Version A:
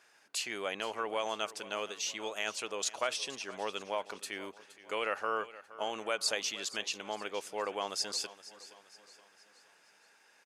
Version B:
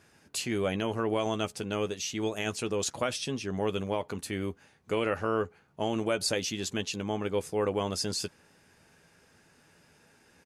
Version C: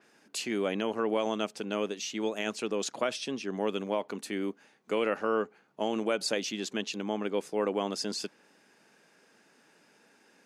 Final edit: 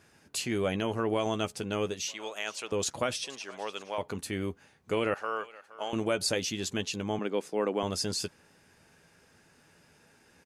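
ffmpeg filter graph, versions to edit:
-filter_complex "[0:a]asplit=3[a][b][c];[1:a]asplit=5[d][e][f][g][h];[d]atrim=end=2.082[i];[a]atrim=start=2.078:end=2.722[j];[e]atrim=start=2.718:end=3.242[k];[b]atrim=start=3.238:end=3.982[l];[f]atrim=start=3.978:end=5.142[m];[c]atrim=start=5.138:end=5.932[n];[g]atrim=start=5.928:end=7.192[o];[2:a]atrim=start=7.188:end=7.832[p];[h]atrim=start=7.828[q];[i][j]acrossfade=d=0.004:c1=hsin:c2=hsin[r];[r][k]acrossfade=d=0.004:c1=hsin:c2=hsin[s];[s][l]acrossfade=d=0.004:c1=hsin:c2=hsin[t];[t][m]acrossfade=d=0.004:c1=hsin:c2=hsin[u];[u][n]acrossfade=d=0.004:c1=hsin:c2=hsin[v];[v][o]acrossfade=d=0.004:c1=hsin:c2=hsin[w];[w][p]acrossfade=d=0.004:c1=hsin:c2=hsin[x];[x][q]acrossfade=d=0.004:c1=hsin:c2=hsin"

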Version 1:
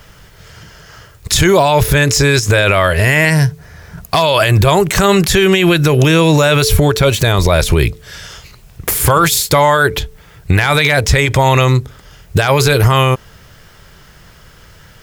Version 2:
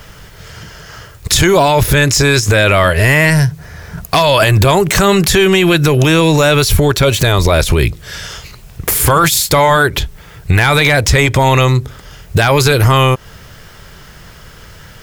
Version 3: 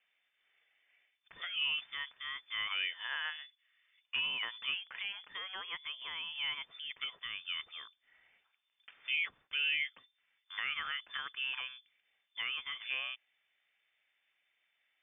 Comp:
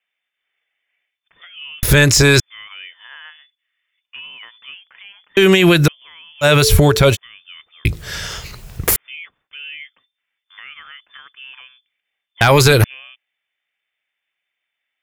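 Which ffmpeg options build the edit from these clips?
-filter_complex "[1:a]asplit=3[a][b][c];[0:a]asplit=2[d][e];[2:a]asplit=6[f][g][h][i][j][k];[f]atrim=end=1.832[l];[a]atrim=start=1.828:end=2.402[m];[g]atrim=start=2.398:end=5.372[n];[d]atrim=start=5.368:end=5.882[o];[h]atrim=start=5.878:end=6.45[p];[e]atrim=start=6.41:end=7.17[q];[i]atrim=start=7.13:end=7.852[r];[b]atrim=start=7.848:end=8.962[s];[j]atrim=start=8.958:end=12.412[t];[c]atrim=start=12.408:end=12.842[u];[k]atrim=start=12.838[v];[l][m]acrossfade=d=0.004:c1=hsin:c2=hsin[w];[w][n]acrossfade=d=0.004:c1=hsin:c2=hsin[x];[x][o]acrossfade=d=0.004:c1=hsin:c2=hsin[y];[y][p]acrossfade=d=0.004:c1=hsin:c2=hsin[z];[z][q]acrossfade=d=0.04:c1=tri:c2=tri[aa];[aa][r]acrossfade=d=0.04:c1=tri:c2=tri[ab];[ab][s]acrossfade=d=0.004:c1=hsin:c2=hsin[ac];[ac][t]acrossfade=d=0.004:c1=hsin:c2=hsin[ad];[ad][u]acrossfade=d=0.004:c1=hsin:c2=hsin[ae];[ae][v]acrossfade=d=0.004:c1=hsin:c2=hsin"

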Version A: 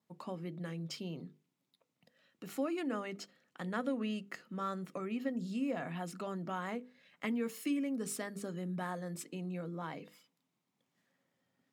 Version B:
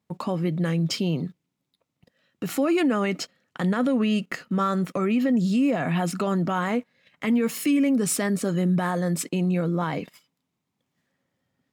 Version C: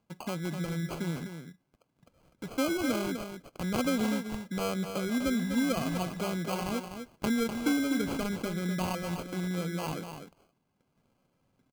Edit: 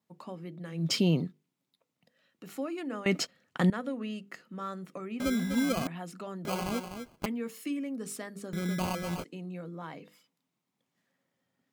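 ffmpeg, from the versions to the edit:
-filter_complex "[1:a]asplit=2[a][b];[2:a]asplit=3[c][d][e];[0:a]asplit=6[f][g][h][i][j][k];[f]atrim=end=0.96[l];[a]atrim=start=0.72:end=1.38[m];[g]atrim=start=1.14:end=3.062[n];[b]atrim=start=3.058:end=3.702[o];[h]atrim=start=3.698:end=5.202[p];[c]atrim=start=5.198:end=5.872[q];[i]atrim=start=5.868:end=6.452[r];[d]atrim=start=6.448:end=7.262[s];[j]atrim=start=7.258:end=8.532[t];[e]atrim=start=8.528:end=9.242[u];[k]atrim=start=9.238[v];[l][m]acrossfade=d=0.24:c1=tri:c2=tri[w];[w][n]acrossfade=d=0.24:c1=tri:c2=tri[x];[x][o]acrossfade=d=0.004:c1=hsin:c2=hsin[y];[y][p]acrossfade=d=0.004:c1=hsin:c2=hsin[z];[z][q]acrossfade=d=0.004:c1=hsin:c2=hsin[aa];[aa][r]acrossfade=d=0.004:c1=hsin:c2=hsin[ab];[ab][s]acrossfade=d=0.004:c1=hsin:c2=hsin[ac];[ac][t]acrossfade=d=0.004:c1=hsin:c2=hsin[ad];[ad][u]acrossfade=d=0.004:c1=hsin:c2=hsin[ae];[ae][v]acrossfade=d=0.004:c1=hsin:c2=hsin"

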